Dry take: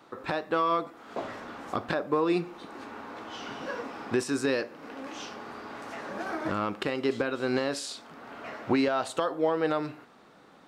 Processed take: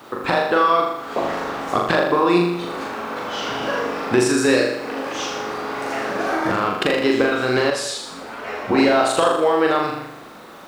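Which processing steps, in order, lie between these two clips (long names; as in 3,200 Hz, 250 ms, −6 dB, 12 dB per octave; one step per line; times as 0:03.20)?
mains-hum notches 50/100/150/200/250/300 Hz
harmonic and percussive parts rebalanced percussive +5 dB
in parallel at −1.5 dB: downward compressor, threshold −37 dBFS, peak gain reduction 18 dB
on the sum: bit reduction 10 bits
flutter between parallel walls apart 6.9 metres, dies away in 0.83 s
0:07.70–0:08.78: string-ensemble chorus
level +4.5 dB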